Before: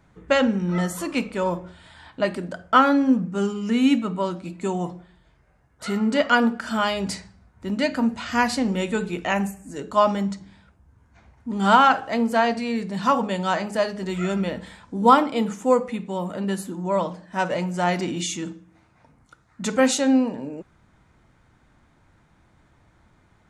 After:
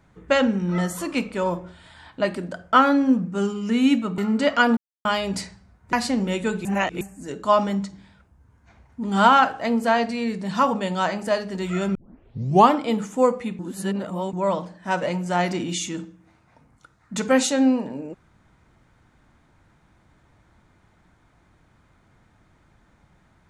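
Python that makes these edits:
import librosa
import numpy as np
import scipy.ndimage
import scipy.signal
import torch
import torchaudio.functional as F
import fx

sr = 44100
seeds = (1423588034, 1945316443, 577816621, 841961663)

y = fx.edit(x, sr, fx.cut(start_s=4.18, length_s=1.73),
    fx.silence(start_s=6.5, length_s=0.28),
    fx.cut(start_s=7.66, length_s=0.75),
    fx.reverse_span(start_s=9.13, length_s=0.36),
    fx.tape_start(start_s=14.43, length_s=0.78),
    fx.reverse_span(start_s=16.07, length_s=0.74), tone=tone)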